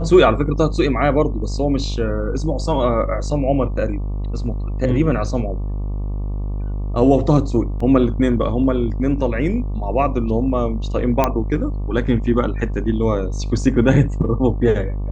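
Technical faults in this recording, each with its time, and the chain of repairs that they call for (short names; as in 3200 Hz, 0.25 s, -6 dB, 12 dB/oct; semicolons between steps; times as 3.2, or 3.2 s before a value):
buzz 50 Hz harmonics 24 -23 dBFS
7.8 gap 4.1 ms
11.24 pop -3 dBFS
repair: de-click; de-hum 50 Hz, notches 24; interpolate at 7.8, 4.1 ms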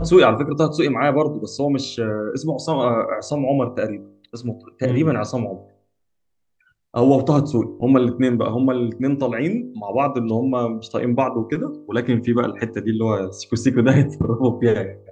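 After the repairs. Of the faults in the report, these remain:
none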